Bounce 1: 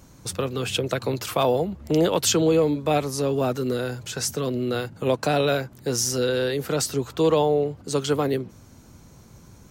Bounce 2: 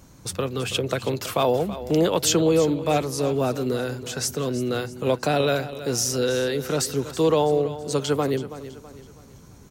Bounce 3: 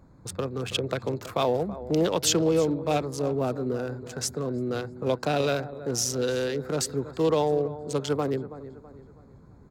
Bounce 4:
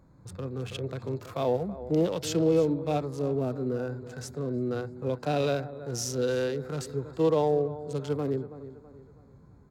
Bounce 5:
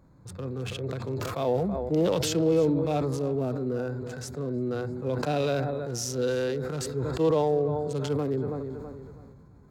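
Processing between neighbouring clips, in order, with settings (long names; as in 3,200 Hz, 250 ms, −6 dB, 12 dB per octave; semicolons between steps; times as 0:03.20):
repeating echo 327 ms, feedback 41%, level −14 dB
adaptive Wiener filter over 15 samples; dynamic equaliser 4,000 Hz, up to +3 dB, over −37 dBFS, Q 0.75; level −3.5 dB
harmonic and percussive parts rebalanced percussive −13 dB
level that may fall only so fast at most 23 dB per second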